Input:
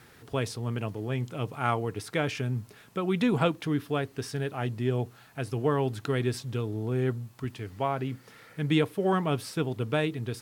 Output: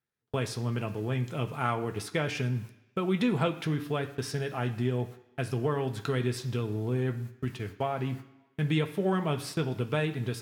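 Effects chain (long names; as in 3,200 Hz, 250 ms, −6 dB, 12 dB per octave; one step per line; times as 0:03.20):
noise gate −40 dBFS, range −39 dB
downward compressor 2 to 1, threshold −31 dBFS, peak gain reduction 7 dB
on a send: convolution reverb RT60 1.0 s, pre-delay 3 ms, DRR 5 dB
on the sum: level +2 dB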